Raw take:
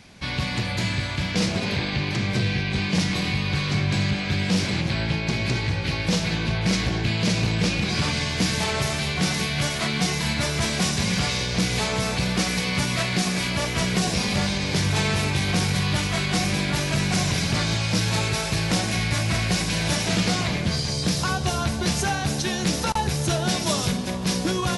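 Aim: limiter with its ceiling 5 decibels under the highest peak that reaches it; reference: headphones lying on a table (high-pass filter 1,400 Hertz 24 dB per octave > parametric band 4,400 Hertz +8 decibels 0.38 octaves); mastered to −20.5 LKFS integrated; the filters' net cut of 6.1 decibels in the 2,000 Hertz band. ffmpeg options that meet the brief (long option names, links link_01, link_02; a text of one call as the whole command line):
ffmpeg -i in.wav -af "equalizer=frequency=2000:width_type=o:gain=-7.5,alimiter=limit=-15.5dB:level=0:latency=1,highpass=frequency=1400:width=0.5412,highpass=frequency=1400:width=1.3066,equalizer=frequency=4400:width_type=o:width=0.38:gain=8,volume=6dB" out.wav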